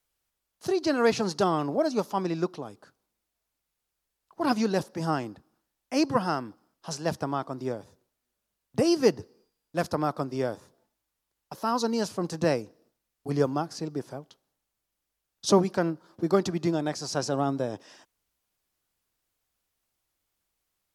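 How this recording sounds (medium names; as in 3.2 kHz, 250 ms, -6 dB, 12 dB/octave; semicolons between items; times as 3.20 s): noise floor -83 dBFS; spectral tilt -5.5 dB/octave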